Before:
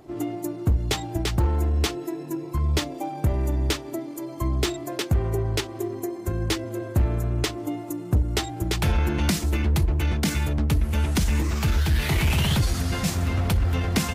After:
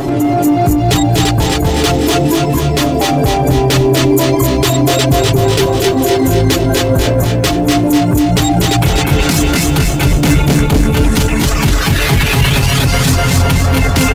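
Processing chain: in parallel at -2 dB: negative-ratio compressor -32 dBFS; on the sum: comb 7.2 ms, depth 69%; feedback echo 0.268 s, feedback 35%, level -3.5 dB; reverb removal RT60 0.79 s; 10.05–10.95 low shelf 420 Hz +9 dB; soft clip -17 dBFS, distortion -10 dB; maximiser +28.5 dB; lo-fi delay 0.245 s, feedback 55%, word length 7-bit, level -4.5 dB; gain -6.5 dB

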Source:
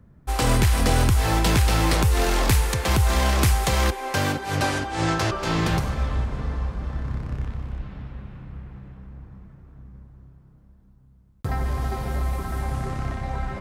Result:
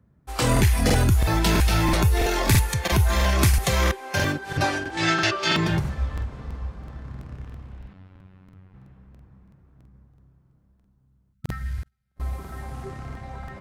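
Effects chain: HPF 50 Hz 12 dB/oct; 11.79–12.2 gate -21 dBFS, range -39 dB; spectral noise reduction 9 dB; 4.97–5.54 weighting filter D; 7.93–8.74 robotiser 93.7 Hz; 11.34–12.11 spectral gain 220–1300 Hz -18 dB; crackling interface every 0.33 s, samples 2048, repeat, from 0.52; gain +1.5 dB

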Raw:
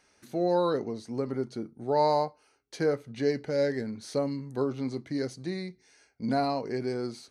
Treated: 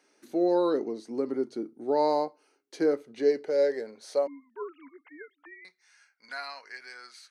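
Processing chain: 4.27–5.65 sine-wave speech; high-pass sweep 310 Hz -> 1600 Hz, 2.84–6.4; gain -3 dB

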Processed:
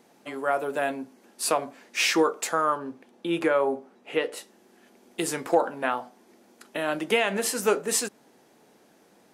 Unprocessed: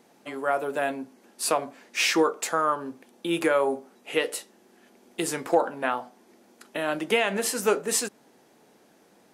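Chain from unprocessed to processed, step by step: 2.77–4.36 LPF 3800 Hz -> 2100 Hz 6 dB/oct

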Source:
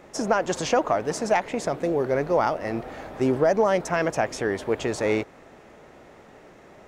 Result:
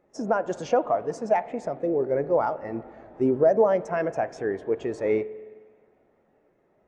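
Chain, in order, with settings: spring tank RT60 2.5 s, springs 44/51 ms, chirp 40 ms, DRR 10.5 dB; spectral expander 1.5:1

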